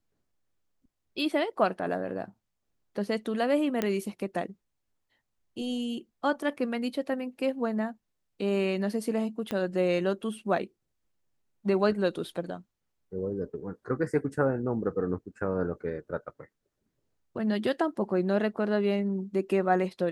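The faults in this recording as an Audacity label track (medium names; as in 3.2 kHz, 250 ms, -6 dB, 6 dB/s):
3.820000	3.820000	pop -14 dBFS
9.510000	9.510000	pop -18 dBFS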